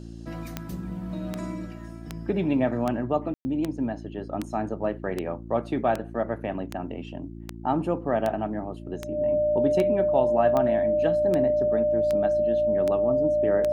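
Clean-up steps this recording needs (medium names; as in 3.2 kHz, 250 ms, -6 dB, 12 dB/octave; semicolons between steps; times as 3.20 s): de-click; de-hum 56.6 Hz, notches 6; band-stop 600 Hz, Q 30; room tone fill 3.34–3.45 s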